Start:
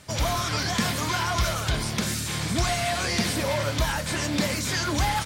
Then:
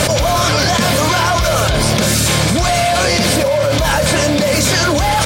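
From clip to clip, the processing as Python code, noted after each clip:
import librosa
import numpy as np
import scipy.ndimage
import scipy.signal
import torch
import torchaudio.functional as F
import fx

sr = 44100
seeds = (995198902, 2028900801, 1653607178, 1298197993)

y = fx.peak_eq(x, sr, hz=570.0, db=10.0, octaves=0.46)
y = fx.notch(y, sr, hz=1900.0, q=19.0)
y = fx.env_flatten(y, sr, amount_pct=100)
y = y * librosa.db_to_amplitude(2.5)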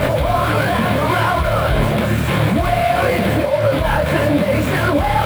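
y = scipy.signal.medfilt(x, 9)
y = fx.peak_eq(y, sr, hz=6400.0, db=-11.0, octaves=0.82)
y = fx.detune_double(y, sr, cents=57)
y = y * librosa.db_to_amplitude(2.5)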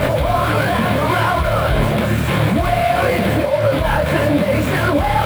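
y = x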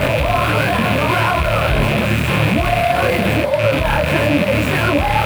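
y = fx.rattle_buzz(x, sr, strikes_db=-23.0, level_db=-10.0)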